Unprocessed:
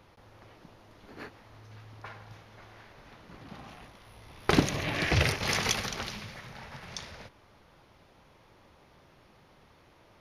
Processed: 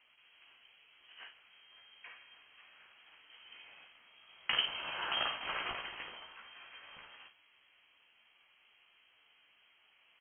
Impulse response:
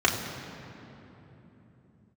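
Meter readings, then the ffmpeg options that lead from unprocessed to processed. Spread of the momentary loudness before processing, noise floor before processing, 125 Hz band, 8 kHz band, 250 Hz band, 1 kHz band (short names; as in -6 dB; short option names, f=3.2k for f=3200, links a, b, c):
21 LU, -60 dBFS, -31.5 dB, under -40 dB, -26.5 dB, -6.5 dB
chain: -af "lowshelf=f=200:g=-6,aecho=1:1:15|54:0.562|0.376,lowpass=f=2.8k:t=q:w=0.5098,lowpass=f=2.8k:t=q:w=0.6013,lowpass=f=2.8k:t=q:w=0.9,lowpass=f=2.8k:t=q:w=2.563,afreqshift=-3300,volume=-8.5dB"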